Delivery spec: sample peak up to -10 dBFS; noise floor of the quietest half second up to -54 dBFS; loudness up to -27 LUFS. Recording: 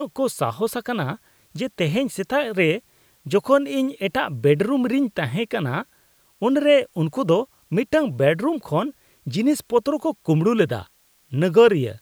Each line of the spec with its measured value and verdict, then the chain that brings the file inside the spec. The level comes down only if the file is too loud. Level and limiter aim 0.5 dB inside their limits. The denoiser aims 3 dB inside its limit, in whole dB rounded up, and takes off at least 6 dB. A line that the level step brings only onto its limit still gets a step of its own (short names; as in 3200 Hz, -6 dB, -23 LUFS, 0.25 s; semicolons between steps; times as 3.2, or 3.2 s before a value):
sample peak -4.0 dBFS: fail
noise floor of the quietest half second -59 dBFS: OK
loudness -21.5 LUFS: fail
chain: gain -6 dB; limiter -10.5 dBFS